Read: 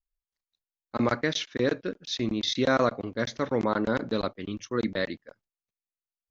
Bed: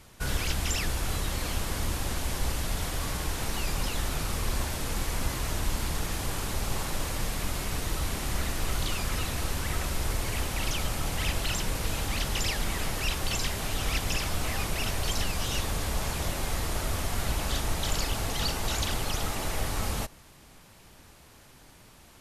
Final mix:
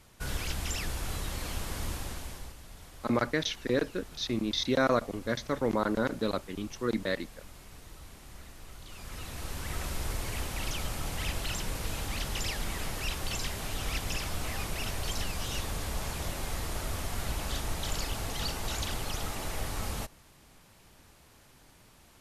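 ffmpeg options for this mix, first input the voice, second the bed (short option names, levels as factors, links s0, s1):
-filter_complex "[0:a]adelay=2100,volume=0.75[s0];[1:a]volume=2.82,afade=t=out:st=1.9:d=0.65:silence=0.211349,afade=t=in:st=8.85:d=1.01:silence=0.199526[s1];[s0][s1]amix=inputs=2:normalize=0"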